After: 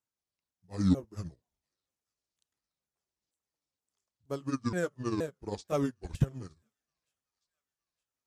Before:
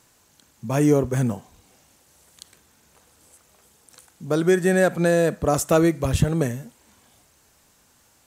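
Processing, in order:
pitch shifter swept by a sawtooth −9 semitones, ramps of 473 ms
delay with a high-pass on its return 916 ms, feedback 65%, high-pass 2,000 Hz, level −18.5 dB
expander for the loud parts 2.5 to 1, over −34 dBFS
level −5.5 dB

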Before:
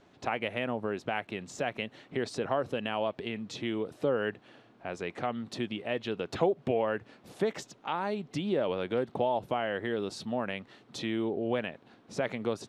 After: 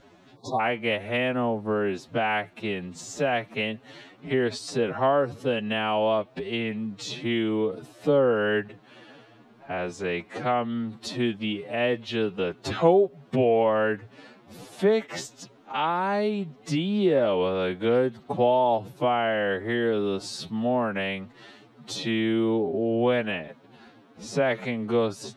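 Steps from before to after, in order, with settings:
phase-vocoder stretch with locked phases 2×
time-frequency box erased 0:00.36–0:00.60, 1,200–3,400 Hz
level +7 dB

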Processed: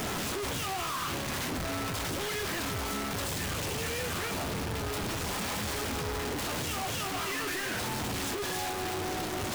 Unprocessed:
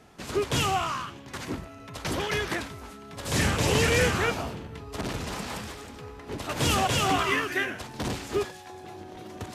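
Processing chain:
sign of each sample alone
flanger 0.39 Hz, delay 9.6 ms, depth 3.2 ms, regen −62%

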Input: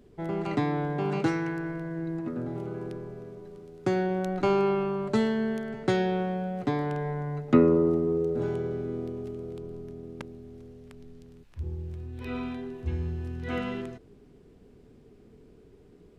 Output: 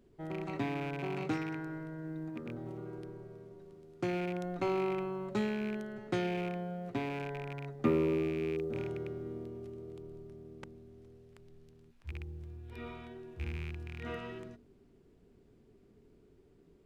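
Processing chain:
loose part that buzzes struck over −30 dBFS, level −26 dBFS
mains-hum notches 50/100/150/200/250 Hz
floating-point word with a short mantissa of 6 bits
wrong playback speed 25 fps video run at 24 fps
level −8 dB

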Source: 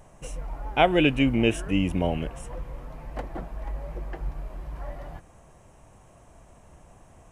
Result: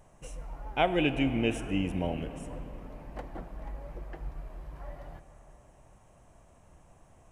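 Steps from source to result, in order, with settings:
comb and all-pass reverb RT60 4.6 s, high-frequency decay 0.45×, pre-delay 5 ms, DRR 10.5 dB
level −6.5 dB

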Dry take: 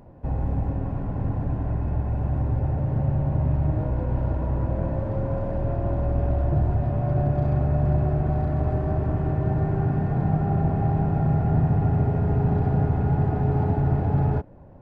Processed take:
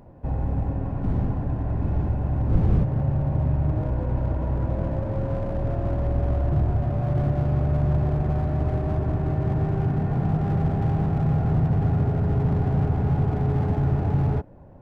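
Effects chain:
0:01.02–0:02.83: wind on the microphone 140 Hz −19 dBFS
slew-rate limiting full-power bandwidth 23 Hz

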